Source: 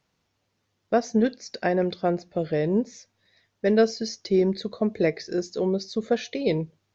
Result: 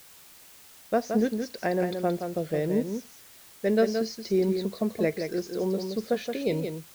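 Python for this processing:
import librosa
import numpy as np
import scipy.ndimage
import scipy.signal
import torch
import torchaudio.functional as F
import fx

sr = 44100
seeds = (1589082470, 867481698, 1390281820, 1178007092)

y = fx.high_shelf(x, sr, hz=4600.0, db=-3.5)
y = y + 10.0 ** (-6.5 / 20.0) * np.pad(y, (int(172 * sr / 1000.0), 0))[:len(y)]
y = fx.quant_dither(y, sr, seeds[0], bits=8, dither='triangular')
y = y * 10.0 ** (-3.5 / 20.0)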